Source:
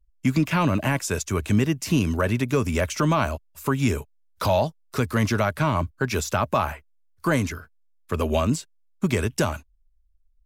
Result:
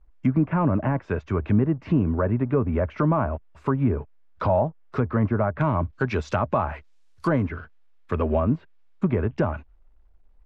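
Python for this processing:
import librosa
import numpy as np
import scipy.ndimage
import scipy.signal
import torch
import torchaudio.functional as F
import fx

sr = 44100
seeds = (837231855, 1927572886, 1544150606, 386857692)

y = fx.law_mismatch(x, sr, coded='mu')
y = fx.env_lowpass_down(y, sr, base_hz=1200.0, full_db=-18.5)
y = fx.lowpass(y, sr, hz=fx.steps((0.0, 1800.0), (5.61, 6700.0), (7.42, 2500.0)), slope=12)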